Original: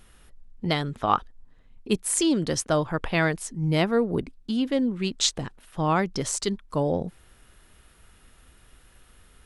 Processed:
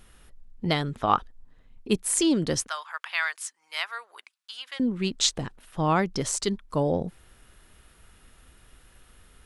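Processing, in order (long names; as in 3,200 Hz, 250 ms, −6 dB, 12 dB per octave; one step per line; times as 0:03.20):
0:02.68–0:04.80: high-pass filter 1,100 Hz 24 dB per octave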